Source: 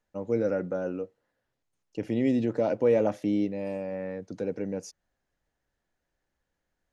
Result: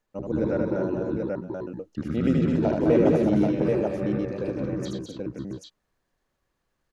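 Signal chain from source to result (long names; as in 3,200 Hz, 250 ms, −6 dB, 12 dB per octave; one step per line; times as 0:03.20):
pitch shifter gated in a rhythm −7 semitones, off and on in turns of 63 ms
multi-tap delay 77/207/262/537/677/784 ms −3.5/−5/−6.5/−15/−16.5/−3 dB
level +1.5 dB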